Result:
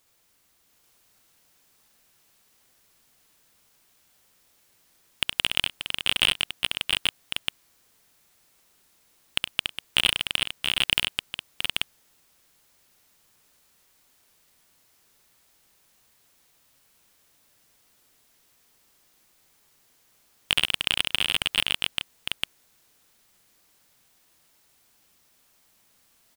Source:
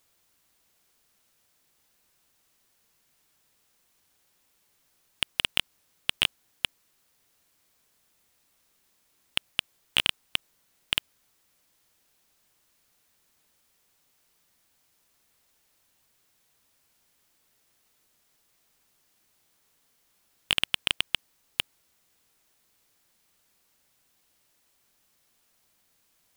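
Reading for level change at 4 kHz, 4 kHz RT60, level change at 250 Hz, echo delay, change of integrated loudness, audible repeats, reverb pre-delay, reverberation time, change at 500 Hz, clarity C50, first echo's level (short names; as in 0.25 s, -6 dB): +5.5 dB, none, +5.5 dB, 67 ms, +3.5 dB, 6, none, none, +5.5 dB, none, -4.0 dB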